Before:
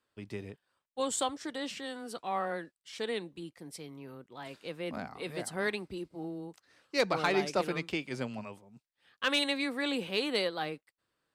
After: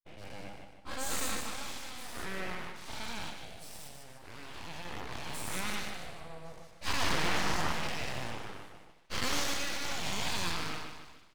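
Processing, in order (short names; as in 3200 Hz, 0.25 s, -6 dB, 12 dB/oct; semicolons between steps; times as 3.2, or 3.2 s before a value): spectral dilation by 0.24 s; on a send: feedback echo 0.15 s, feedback 43%, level -6.5 dB; on the sum: Schroeder reverb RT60 3.5 s, combs from 32 ms, DRR 18.5 dB; expander -44 dBFS; full-wave rectifier; gain -7 dB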